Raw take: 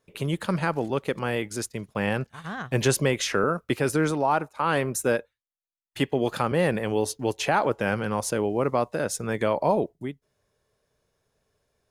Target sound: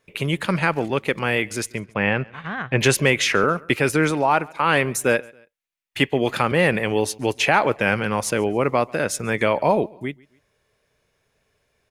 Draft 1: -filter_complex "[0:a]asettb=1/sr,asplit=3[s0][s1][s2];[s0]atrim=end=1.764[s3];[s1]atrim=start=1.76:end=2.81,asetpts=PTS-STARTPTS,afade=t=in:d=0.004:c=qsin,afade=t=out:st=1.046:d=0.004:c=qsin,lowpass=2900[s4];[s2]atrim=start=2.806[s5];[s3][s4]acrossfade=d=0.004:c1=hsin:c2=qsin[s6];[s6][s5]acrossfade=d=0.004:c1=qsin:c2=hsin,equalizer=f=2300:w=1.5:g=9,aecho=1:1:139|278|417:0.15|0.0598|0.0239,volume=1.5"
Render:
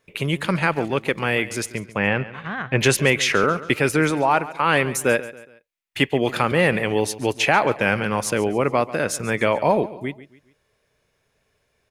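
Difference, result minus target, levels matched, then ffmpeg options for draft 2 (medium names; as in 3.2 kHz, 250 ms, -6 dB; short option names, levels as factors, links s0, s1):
echo-to-direct +8.5 dB
-filter_complex "[0:a]asettb=1/sr,asplit=3[s0][s1][s2];[s0]atrim=end=1.764[s3];[s1]atrim=start=1.76:end=2.81,asetpts=PTS-STARTPTS,afade=t=in:d=0.004:c=qsin,afade=t=out:st=1.046:d=0.004:c=qsin,lowpass=2900[s4];[s2]atrim=start=2.806[s5];[s3][s4]acrossfade=d=0.004:c1=hsin:c2=qsin[s6];[s6][s5]acrossfade=d=0.004:c1=qsin:c2=hsin,equalizer=f=2300:w=1.5:g=9,aecho=1:1:139|278:0.0562|0.0225,volume=1.5"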